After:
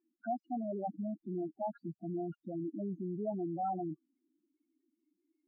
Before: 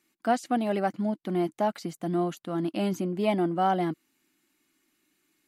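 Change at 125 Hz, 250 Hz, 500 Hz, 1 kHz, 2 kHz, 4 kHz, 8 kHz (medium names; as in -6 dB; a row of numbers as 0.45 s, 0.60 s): -10.0 dB, -10.0 dB, -11.0 dB, -11.0 dB, under -20 dB, under -40 dB, under -30 dB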